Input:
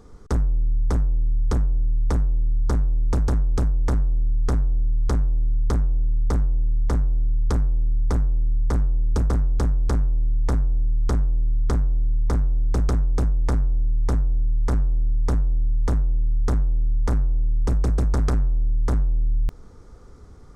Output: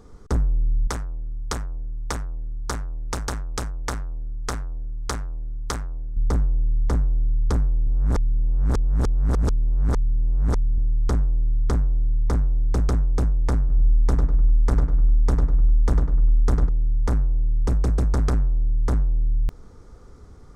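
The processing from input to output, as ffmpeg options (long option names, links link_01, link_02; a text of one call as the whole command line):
ffmpeg -i in.wav -filter_complex "[0:a]asettb=1/sr,asplit=3[link_01][link_02][link_03];[link_01]atrim=end=0.874[link_04];[link_02]atrim=start=0.87:end=6.17,asetpts=PTS-STARTPTS,afade=type=in:duration=0.004:curve=qsin,afade=type=out:start_time=5.296:duration=0.004:curve=qsin,tiltshelf=frequency=690:gain=-9.5[link_05];[link_03]atrim=start=6.166[link_06];[link_04][link_05]acrossfade=duration=0.004:curve1=hsin:curve2=qsin[link_07];[link_07][link_06]acrossfade=duration=0.004:curve1=qsin:curve2=hsin,asettb=1/sr,asplit=3[link_08][link_09][link_10];[link_08]atrim=end=13.594[link_11];[link_09]atrim=start=13.59:end=16.69,asetpts=PTS-STARTPTS,afade=type=in:duration=0.004:curve=qsin,afade=type=out:start_time=3.096:duration=0.004:curve=qsin,asplit=2[link_12][link_13];[link_13]adelay=100,lowpass=frequency=3000:poles=1,volume=-5dB,asplit=2[link_14][link_15];[link_15]adelay=100,lowpass=frequency=3000:poles=1,volume=0.43,asplit=2[link_16][link_17];[link_17]adelay=100,lowpass=frequency=3000:poles=1,volume=0.43,asplit=2[link_18][link_19];[link_19]adelay=100,lowpass=frequency=3000:poles=1,volume=0.43,asplit=2[link_20][link_21];[link_21]adelay=100,lowpass=frequency=3000:poles=1,volume=0.43[link_22];[link_12][link_14][link_16][link_18][link_20][link_22]amix=inputs=6:normalize=0,atrim=end_sample=136710[link_23];[link_10]atrim=start=16.686[link_24];[link_11][link_23]acrossfade=duration=0.004:curve1=hsin:curve2=qsin[link_25];[link_25][link_24]acrossfade=duration=0.004:curve1=qsin:curve2=hsin,asplit=3[link_26][link_27][link_28];[link_26]atrim=end=7.872[link_29];[link_27]atrim=start=7.868:end=10.782,asetpts=PTS-STARTPTS,areverse[link_30];[link_28]atrim=start=10.778[link_31];[link_29][link_30]acrossfade=duration=0.004:curve1=hsin:curve2=hsin[link_32];[link_32][link_31]acrossfade=duration=0.004:curve1=hsin:curve2=hsin" out.wav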